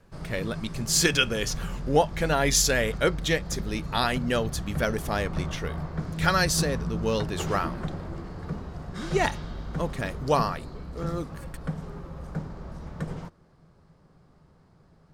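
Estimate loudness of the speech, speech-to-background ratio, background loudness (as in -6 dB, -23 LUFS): -27.0 LUFS, 8.5 dB, -35.5 LUFS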